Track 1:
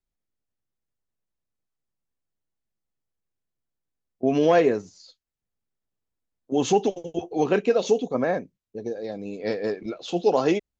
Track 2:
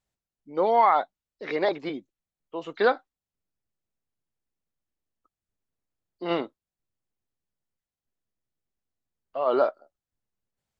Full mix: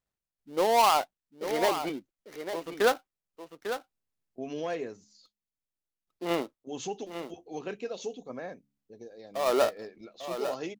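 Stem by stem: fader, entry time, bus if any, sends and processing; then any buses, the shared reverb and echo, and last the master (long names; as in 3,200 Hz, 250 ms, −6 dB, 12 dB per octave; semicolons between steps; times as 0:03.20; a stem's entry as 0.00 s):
−16.0 dB, 0.15 s, no send, no echo send, high-shelf EQ 2,300 Hz +7.5 dB; hum removal 69.77 Hz, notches 4; hard clipping −8.5 dBFS, distortion −40 dB
−2.0 dB, 0.00 s, muted 0:05.32–0:06.07, no send, echo send −9.5 dB, gap after every zero crossing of 0.15 ms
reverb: not used
echo: single-tap delay 848 ms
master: no processing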